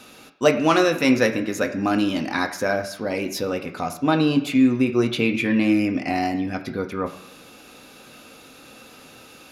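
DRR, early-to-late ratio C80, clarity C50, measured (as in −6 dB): 3.5 dB, 13.0 dB, 11.0 dB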